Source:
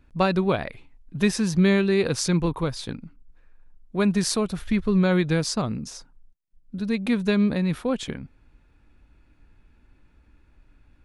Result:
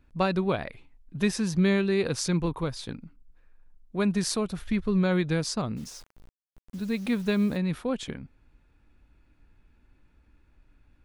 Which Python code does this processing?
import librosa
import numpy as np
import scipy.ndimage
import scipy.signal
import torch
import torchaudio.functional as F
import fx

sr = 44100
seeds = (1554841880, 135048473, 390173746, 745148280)

y = fx.quant_dither(x, sr, seeds[0], bits=8, dither='none', at=(5.76, 7.56), fade=0.02)
y = y * 10.0 ** (-4.0 / 20.0)